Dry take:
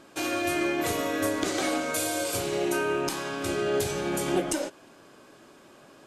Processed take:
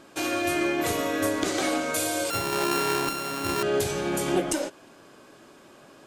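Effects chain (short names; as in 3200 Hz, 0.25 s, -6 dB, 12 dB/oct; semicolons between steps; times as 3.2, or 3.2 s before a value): 2.3–3.63 sample sorter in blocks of 32 samples; gain +1.5 dB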